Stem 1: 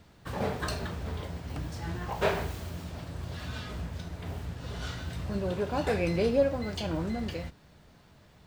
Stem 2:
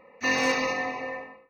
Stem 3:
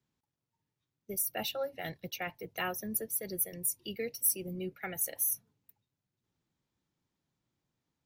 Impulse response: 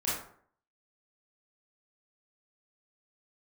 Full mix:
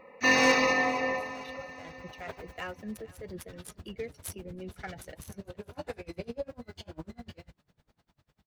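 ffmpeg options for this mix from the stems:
-filter_complex "[0:a]flanger=delay=19:depth=3.4:speed=2,aeval=exprs='val(0)*pow(10,-31*(0.5-0.5*cos(2*PI*10*n/s))/20)':c=same,volume=0.133[s0];[1:a]aeval=exprs='0.237*(cos(1*acos(clip(val(0)/0.237,-1,1)))-cos(1*PI/2))+0.0106*(cos(5*acos(clip(val(0)/0.237,-1,1)))-cos(5*PI/2))+0.00944*(cos(7*acos(clip(val(0)/0.237,-1,1)))-cos(7*PI/2))':c=same,volume=1.19,asplit=2[s1][s2];[s2]volume=0.133[s3];[2:a]flanger=delay=3.4:depth=3.8:regen=34:speed=1.1:shape=sinusoidal,adynamicsmooth=sensitivity=7.5:basefreq=2000,volume=0.282,asplit=2[s4][s5];[s5]volume=0.075[s6];[s3][s6]amix=inputs=2:normalize=0,aecho=0:1:459|918|1377|1836|2295:1|0.35|0.122|0.0429|0.015[s7];[s0][s1][s4][s7]amix=inputs=4:normalize=0,dynaudnorm=f=330:g=11:m=5.01"

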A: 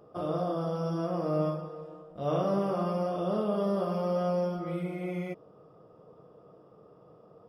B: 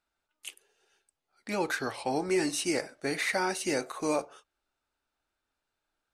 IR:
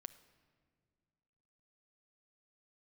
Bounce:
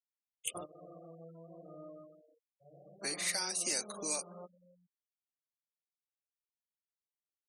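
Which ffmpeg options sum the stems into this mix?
-filter_complex "[0:a]adelay=400,volume=0.668,afade=t=out:st=2.16:d=0.73:silence=0.334965,afade=t=out:st=4.41:d=0.46:silence=0.281838,asplit=2[s0][s1];[s1]volume=0.0794[s2];[1:a]acrossover=split=480[s3][s4];[s3]aeval=exprs='val(0)*(1-0.7/2+0.7/2*cos(2*PI*2.5*n/s))':c=same[s5];[s4]aeval=exprs='val(0)*(1-0.7/2-0.7/2*cos(2*PI*2.5*n/s))':c=same[s6];[s5][s6]amix=inputs=2:normalize=0,volume=1.06,asplit=3[s7][s8][s9];[s7]atrim=end=1.38,asetpts=PTS-STARTPTS,afade=t=out:st=1.376:d=0.004:c=hsin[s10];[s8]atrim=start=1.38:end=2.98,asetpts=PTS-STARTPTS,volume=0[s11];[s9]atrim=start=2.98,asetpts=PTS-STARTPTS,afade=t=in:d=0.004:c=hsin[s12];[s10][s11][s12]concat=n=3:v=0:a=1,asplit=2[s13][s14];[s14]apad=whole_len=347830[s15];[s0][s15]sidechaingate=range=0.0891:threshold=0.001:ratio=16:detection=peak[s16];[s2]aecho=0:1:140|280|420|560|700:1|0.37|0.137|0.0507|0.0187[s17];[s16][s13][s17]amix=inputs=3:normalize=0,afftfilt=real='re*gte(hypot(re,im),0.00398)':imag='im*gte(hypot(re,im),0.00398)':win_size=1024:overlap=0.75,acrossover=split=270|3700[s18][s19][s20];[s18]acompressor=threshold=0.00158:ratio=4[s21];[s19]acompressor=threshold=0.00631:ratio=4[s22];[s20]acompressor=threshold=0.00708:ratio=4[s23];[s21][s22][s23]amix=inputs=3:normalize=0,crystalizer=i=3.5:c=0"

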